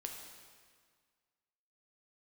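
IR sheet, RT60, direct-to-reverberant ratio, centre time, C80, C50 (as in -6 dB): 1.8 s, 1.5 dB, 55 ms, 5.0 dB, 3.5 dB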